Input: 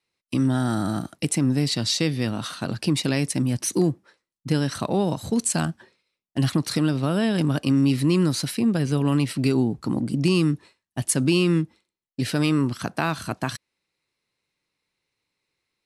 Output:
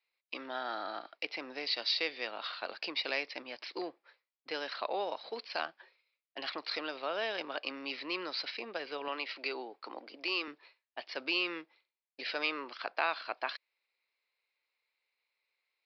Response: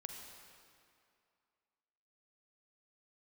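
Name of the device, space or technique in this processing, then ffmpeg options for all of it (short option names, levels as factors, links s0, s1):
musical greeting card: -filter_complex "[0:a]aresample=11025,aresample=44100,highpass=f=500:w=0.5412,highpass=f=500:w=1.3066,equalizer=f=2300:t=o:w=0.34:g=6.5,asettb=1/sr,asplit=3[s0][s1][s2];[s0]atrim=end=9.084[s3];[s1]atrim=start=9.08:end=10.48,asetpts=PTS-STARTPTS,afade=t=in:d=0.004:c=qsin,afade=t=out:st=1.396:d=0.004:c=qsin,highpass=270[s4];[s2]atrim=start=10.476[s5];[s3][s4]acrossfade=d=0.004:c1=hsin:c2=qsin[s6];[s6][s5]acrossfade=d=0.004:c1=qsin:c2=hsin,volume=0.501"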